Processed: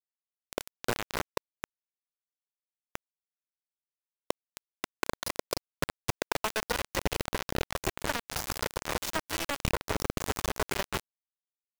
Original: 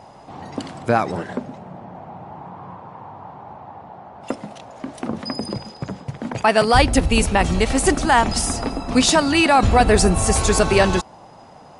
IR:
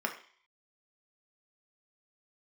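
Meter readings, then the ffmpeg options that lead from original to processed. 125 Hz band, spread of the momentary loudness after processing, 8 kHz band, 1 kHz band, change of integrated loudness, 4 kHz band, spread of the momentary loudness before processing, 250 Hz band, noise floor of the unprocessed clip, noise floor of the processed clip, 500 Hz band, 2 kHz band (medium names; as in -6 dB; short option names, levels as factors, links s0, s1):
-16.5 dB, 11 LU, -14.0 dB, -17.0 dB, -16.0 dB, -12.5 dB, 22 LU, -19.5 dB, -44 dBFS, under -85 dBFS, -16.0 dB, -13.0 dB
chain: -filter_complex "[0:a]lowshelf=f=73:g=-5.5,alimiter=limit=0.266:level=0:latency=1:release=438,aecho=1:1:2:0.92,asplit=2[s0][s1];[1:a]atrim=start_sample=2205,asetrate=48510,aresample=44100[s2];[s1][s2]afir=irnorm=-1:irlink=0,volume=0.0794[s3];[s0][s3]amix=inputs=2:normalize=0,acrossover=split=160[s4][s5];[s5]acompressor=threshold=0.0355:ratio=1.5[s6];[s4][s6]amix=inputs=2:normalize=0,asplit=6[s7][s8][s9][s10][s11][s12];[s8]adelay=263,afreqshift=-130,volume=0.282[s13];[s9]adelay=526,afreqshift=-260,volume=0.132[s14];[s10]adelay=789,afreqshift=-390,volume=0.0624[s15];[s11]adelay=1052,afreqshift=-520,volume=0.0292[s16];[s12]adelay=1315,afreqshift=-650,volume=0.0138[s17];[s7][s13][s14][s15][s16][s17]amix=inputs=6:normalize=0,aresample=16000,aresample=44100,bandreject=f=50:t=h:w=6,bandreject=f=100:t=h:w=6,bandreject=f=150:t=h:w=6,bandreject=f=200:t=h:w=6,bandreject=f=250:t=h:w=6,bandreject=f=300:t=h:w=6,bandreject=f=350:t=h:w=6,bandreject=f=400:t=h:w=6,bandreject=f=450:t=h:w=6,acompressor=threshold=0.0501:ratio=10,acrusher=bits=3:mix=0:aa=0.000001,adynamicequalizer=threshold=0.00794:dfrequency=2000:dqfactor=0.7:tfrequency=2000:tqfactor=0.7:attack=5:release=100:ratio=0.375:range=2:mode=cutabove:tftype=highshelf"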